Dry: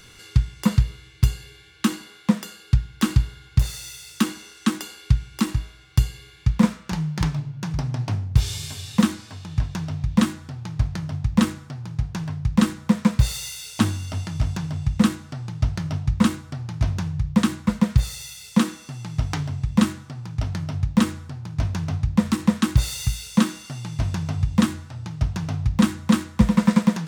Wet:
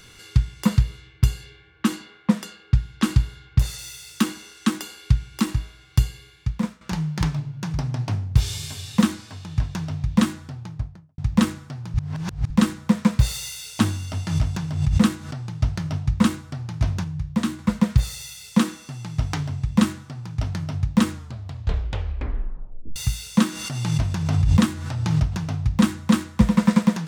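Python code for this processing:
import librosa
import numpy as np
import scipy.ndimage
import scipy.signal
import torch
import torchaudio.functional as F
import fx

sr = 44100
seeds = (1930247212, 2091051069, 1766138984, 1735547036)

y = fx.env_lowpass(x, sr, base_hz=1300.0, full_db=-18.0, at=(0.88, 3.77), fade=0.02)
y = fx.studio_fade_out(y, sr, start_s=10.4, length_s=0.78)
y = fx.pre_swell(y, sr, db_per_s=70.0, at=(14.27, 15.47))
y = fx.comb_fb(y, sr, f0_hz=77.0, decay_s=0.23, harmonics='all', damping=0.0, mix_pct=60, at=(17.04, 17.59))
y = fx.pre_swell(y, sr, db_per_s=35.0, at=(23.52, 25.49))
y = fx.edit(y, sr, fx.fade_out_to(start_s=6.01, length_s=0.8, floor_db=-13.0),
    fx.reverse_span(start_s=11.94, length_s=0.56),
    fx.tape_stop(start_s=21.11, length_s=1.85), tone=tone)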